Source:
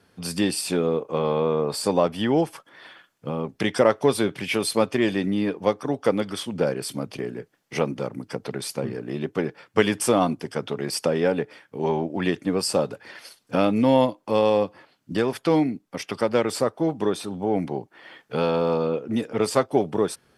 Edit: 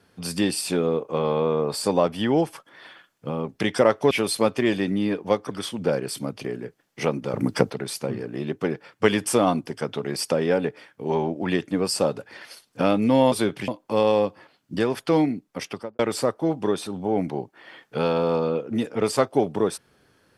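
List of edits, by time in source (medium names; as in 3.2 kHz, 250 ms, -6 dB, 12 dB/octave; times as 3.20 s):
4.11–4.47 s: move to 14.06 s
5.87–6.25 s: delete
8.08–8.44 s: gain +11 dB
16.01–16.37 s: studio fade out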